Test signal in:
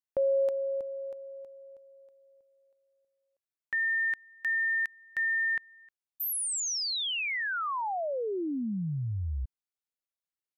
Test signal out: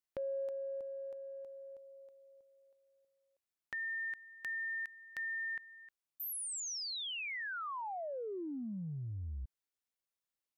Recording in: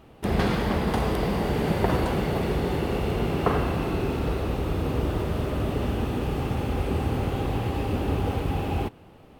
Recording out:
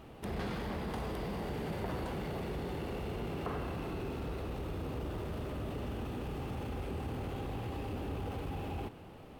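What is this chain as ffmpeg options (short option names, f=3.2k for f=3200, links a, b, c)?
-af "acompressor=threshold=-48dB:ratio=2:attack=2.6:release=20:detection=peak"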